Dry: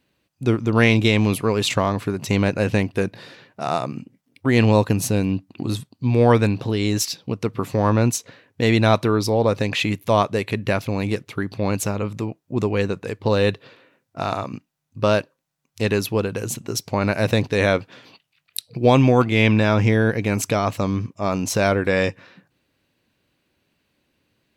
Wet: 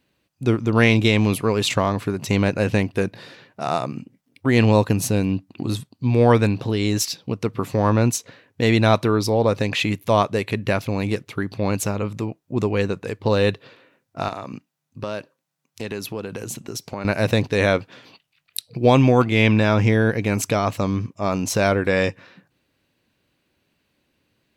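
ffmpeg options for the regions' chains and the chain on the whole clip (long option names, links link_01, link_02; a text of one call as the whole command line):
ffmpeg -i in.wav -filter_complex "[0:a]asettb=1/sr,asplit=3[link_01][link_02][link_03];[link_01]atrim=end=14.284[link_04];[link_02]atrim=start=14.28:end=17.05,asetpts=PTS-STARTPTS,afade=type=in:duration=0.004:curve=qsin,afade=type=out:start_time=2.766:duration=0.004:curve=qsin,highpass=120,acompressor=threshold=-27dB:ratio=3:attack=3.2:release=140:knee=1:detection=peak[link_05];[link_03]atrim=start=17.046[link_06];[link_04][link_05]acrossfade=duration=0.004:curve1=hsin:curve2=qsin[link_07];[link_07][link_06]acrossfade=duration=0.004:curve1=qsin:curve2=hsin" out.wav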